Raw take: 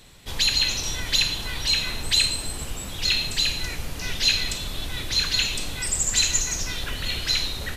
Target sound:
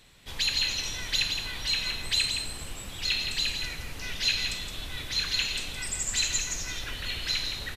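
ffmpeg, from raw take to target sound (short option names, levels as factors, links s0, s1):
-af "equalizer=f=2200:w=0.71:g=4.5,aecho=1:1:167:0.447,volume=0.376"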